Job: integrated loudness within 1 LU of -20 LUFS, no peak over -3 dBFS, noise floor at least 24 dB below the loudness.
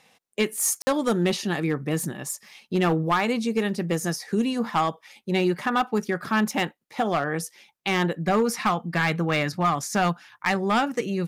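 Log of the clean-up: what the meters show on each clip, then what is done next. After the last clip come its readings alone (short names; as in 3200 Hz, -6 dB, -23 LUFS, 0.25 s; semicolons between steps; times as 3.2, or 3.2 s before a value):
clipped 1.2%; flat tops at -15.5 dBFS; dropouts 1; longest dropout 50 ms; loudness -25.0 LUFS; peak -15.5 dBFS; loudness target -20.0 LUFS
-> clip repair -15.5 dBFS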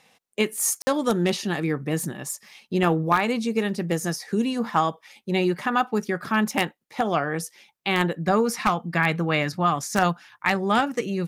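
clipped 0.0%; dropouts 1; longest dropout 50 ms
-> interpolate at 0.82, 50 ms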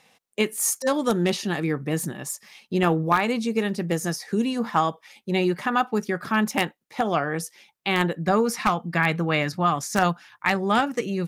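dropouts 0; loudness -24.5 LUFS; peak -6.5 dBFS; loudness target -20.0 LUFS
-> gain +4.5 dB; limiter -3 dBFS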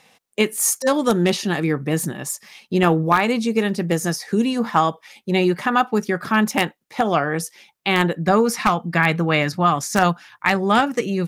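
loudness -20.0 LUFS; peak -3.0 dBFS; noise floor -64 dBFS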